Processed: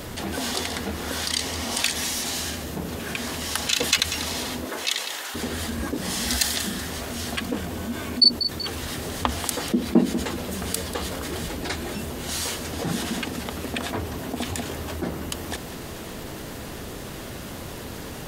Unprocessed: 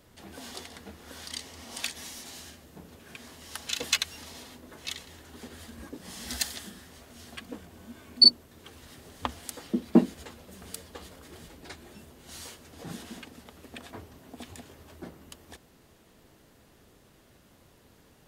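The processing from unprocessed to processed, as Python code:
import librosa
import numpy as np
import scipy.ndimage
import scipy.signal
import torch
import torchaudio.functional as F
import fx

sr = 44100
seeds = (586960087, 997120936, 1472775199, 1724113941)

y = fx.highpass(x, sr, hz=fx.line((4.64, 280.0), (5.34, 1000.0)), slope=12, at=(4.64, 5.34), fade=0.02)
y = fx.echo_feedback(y, sr, ms=190, feedback_pct=25, wet_db=-20.0)
y = fx.env_flatten(y, sr, amount_pct=50)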